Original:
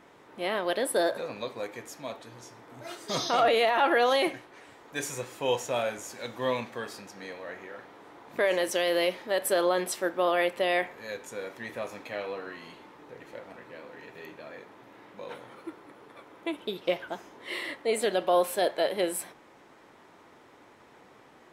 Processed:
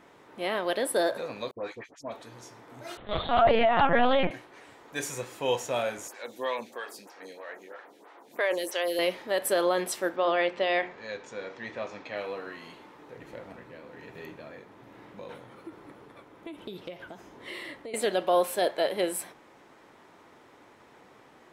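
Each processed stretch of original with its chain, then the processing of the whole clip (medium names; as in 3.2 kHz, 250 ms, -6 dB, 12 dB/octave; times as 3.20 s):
1.51–2.12 s: gate -44 dBFS, range -34 dB + low-pass 5.7 kHz + phase dispersion highs, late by 87 ms, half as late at 2 kHz
2.97–4.31 s: peaking EQ 650 Hz +3 dB 0.95 oct + LPC vocoder at 8 kHz pitch kept + loudspeaker Doppler distortion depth 0.19 ms
6.08–8.99 s: high-pass 270 Hz + treble shelf 4.1 kHz +5.5 dB + lamp-driven phase shifter 3.1 Hz
10.16–12.17 s: low-pass 6 kHz 24 dB/octave + hum notches 60/120/180/240/300/360/420/480 Hz
13.17–17.94 s: bass shelf 200 Hz +11 dB + compression, threshold -35 dBFS + tremolo triangle 1.2 Hz, depth 35%
whole clip: none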